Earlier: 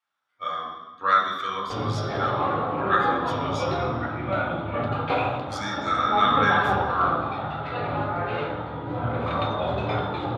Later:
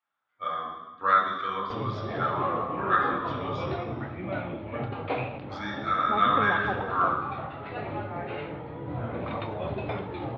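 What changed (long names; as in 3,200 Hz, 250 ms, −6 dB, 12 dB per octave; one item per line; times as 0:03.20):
background: send off
master: add high-frequency loss of the air 290 metres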